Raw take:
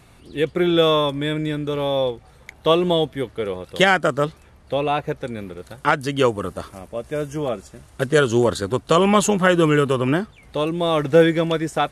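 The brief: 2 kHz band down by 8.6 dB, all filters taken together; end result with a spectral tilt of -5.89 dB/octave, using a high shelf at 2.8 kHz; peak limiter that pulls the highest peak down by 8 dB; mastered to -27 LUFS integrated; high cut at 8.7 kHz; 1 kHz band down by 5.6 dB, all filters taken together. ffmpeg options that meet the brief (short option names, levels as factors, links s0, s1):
-af "lowpass=8700,equalizer=f=1000:t=o:g=-4.5,equalizer=f=2000:t=o:g=-9,highshelf=f=2800:g=-3.5,volume=0.75,alimiter=limit=0.168:level=0:latency=1"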